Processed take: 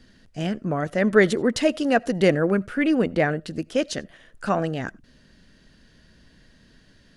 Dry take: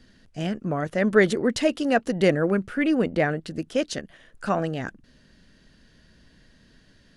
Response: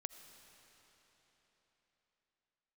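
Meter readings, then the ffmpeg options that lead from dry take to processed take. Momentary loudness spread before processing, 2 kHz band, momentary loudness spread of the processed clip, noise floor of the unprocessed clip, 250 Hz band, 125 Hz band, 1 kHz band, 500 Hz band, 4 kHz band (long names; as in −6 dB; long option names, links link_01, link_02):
12 LU, +1.5 dB, 12 LU, −58 dBFS, +1.5 dB, +1.5 dB, +1.5 dB, +1.5 dB, +1.5 dB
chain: -filter_complex "[0:a]asplit=2[link_01][link_02];[1:a]atrim=start_sample=2205,atrim=end_sample=4410[link_03];[link_02][link_03]afir=irnorm=-1:irlink=0,volume=-1dB[link_04];[link_01][link_04]amix=inputs=2:normalize=0,volume=-2.5dB"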